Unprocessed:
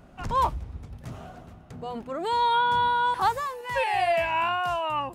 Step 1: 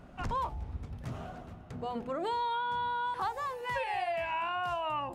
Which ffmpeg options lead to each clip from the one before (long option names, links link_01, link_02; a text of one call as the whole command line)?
ffmpeg -i in.wav -af "highshelf=frequency=5800:gain=-7,bandreject=frequency=54.23:width_type=h:width=4,bandreject=frequency=108.46:width_type=h:width=4,bandreject=frequency=162.69:width_type=h:width=4,bandreject=frequency=216.92:width_type=h:width=4,bandreject=frequency=271.15:width_type=h:width=4,bandreject=frequency=325.38:width_type=h:width=4,bandreject=frequency=379.61:width_type=h:width=4,bandreject=frequency=433.84:width_type=h:width=4,bandreject=frequency=488.07:width_type=h:width=4,bandreject=frequency=542.3:width_type=h:width=4,bandreject=frequency=596.53:width_type=h:width=4,bandreject=frequency=650.76:width_type=h:width=4,bandreject=frequency=704.99:width_type=h:width=4,bandreject=frequency=759.22:width_type=h:width=4,bandreject=frequency=813.45:width_type=h:width=4,bandreject=frequency=867.68:width_type=h:width=4,acompressor=threshold=-31dB:ratio=6" out.wav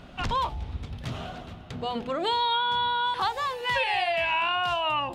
ffmpeg -i in.wav -af "equalizer=frequency=3500:width=1.1:gain=12.5,volume=5dB" out.wav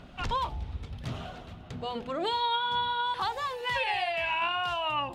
ffmpeg -i in.wav -af "aphaser=in_gain=1:out_gain=1:delay=2.3:decay=0.24:speed=1.8:type=sinusoidal,volume=-4dB" out.wav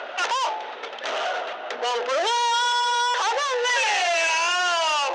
ffmpeg -i in.wav -filter_complex "[0:a]adynamicsmooth=sensitivity=6.5:basefreq=2500,asplit=2[link_01][link_02];[link_02]highpass=frequency=720:poles=1,volume=30dB,asoftclip=type=tanh:threshold=-18dB[link_03];[link_01][link_03]amix=inputs=2:normalize=0,lowpass=frequency=3200:poles=1,volume=-6dB,highpass=frequency=490:width=0.5412,highpass=frequency=490:width=1.3066,equalizer=frequency=760:width_type=q:width=4:gain=-4,equalizer=frequency=1100:width_type=q:width=4:gain=-7,equalizer=frequency=2300:width_type=q:width=4:gain=-3,equalizer=frequency=6100:width_type=q:width=4:gain=7,lowpass=frequency=7900:width=0.5412,lowpass=frequency=7900:width=1.3066,volume=5dB" out.wav